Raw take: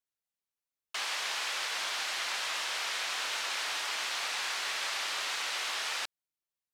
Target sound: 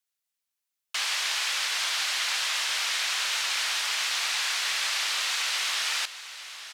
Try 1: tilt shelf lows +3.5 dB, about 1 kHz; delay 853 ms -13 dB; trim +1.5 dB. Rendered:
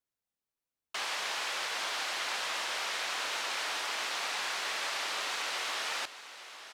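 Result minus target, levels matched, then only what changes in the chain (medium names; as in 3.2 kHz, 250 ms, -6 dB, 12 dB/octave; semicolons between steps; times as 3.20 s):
1 kHz band +6.5 dB
change: tilt shelf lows -6.5 dB, about 1 kHz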